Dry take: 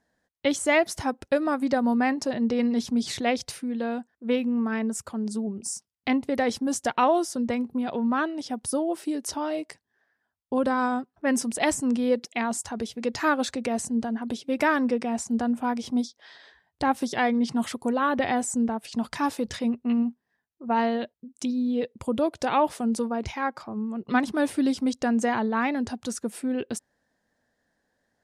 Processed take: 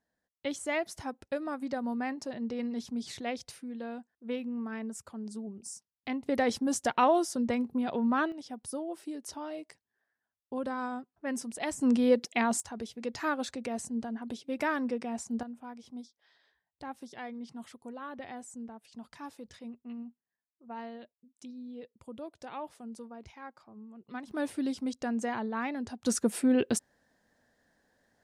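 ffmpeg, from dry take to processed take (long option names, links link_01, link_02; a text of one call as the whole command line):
ffmpeg -i in.wav -af "asetnsamples=nb_out_samples=441:pad=0,asendcmd='6.26 volume volume -3dB;8.32 volume volume -10.5dB;11.81 volume volume -0.5dB;12.6 volume volume -8dB;15.43 volume volume -18dB;24.31 volume volume -8.5dB;26.06 volume volume 3dB',volume=-10.5dB" out.wav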